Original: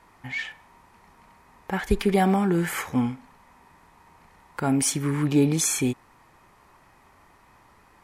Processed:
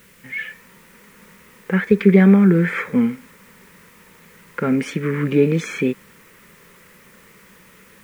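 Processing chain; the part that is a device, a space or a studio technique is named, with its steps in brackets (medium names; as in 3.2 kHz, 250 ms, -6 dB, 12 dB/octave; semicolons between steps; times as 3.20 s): dictaphone (band-pass 310–3300 Hz; level rider gain up to 8 dB; wow and flutter; white noise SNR 22 dB); 1.80–3.01 s: band-stop 2.9 kHz, Q 9.7; FFT filter 120 Hz 0 dB, 190 Hz +10 dB, 290 Hz -7 dB, 500 Hz +1 dB, 740 Hz -21 dB, 1.4 kHz -5 dB, 2.1 kHz -2 dB, 4.2 kHz -14 dB, 8.2 kHz -12 dB; trim +4 dB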